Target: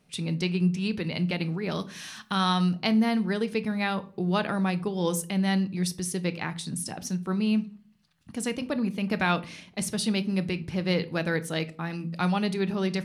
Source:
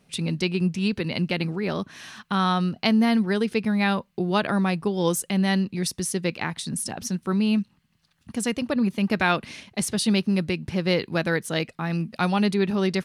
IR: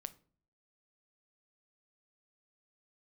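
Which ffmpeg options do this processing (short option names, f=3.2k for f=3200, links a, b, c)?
-filter_complex "[0:a]asettb=1/sr,asplit=3[a][b][c];[a]atrim=end=1.714[d];[b]atrim=start=1.71:end=2.75,asetpts=PTS-STARTPTS,afade=t=in:d=0.004:c=qsin,afade=t=out:st=1.036:d=0.004:c=qsin,highshelf=f=2.7k:g=9.5[e];[c]atrim=start=2.746[f];[d][e]acrossfade=d=0.004:c1=hsin:c2=qsin[g];[g][f]acrossfade=d=0.004:c1=qsin:c2=hsin[h];[1:a]atrim=start_sample=2205[i];[h][i]afir=irnorm=-1:irlink=0"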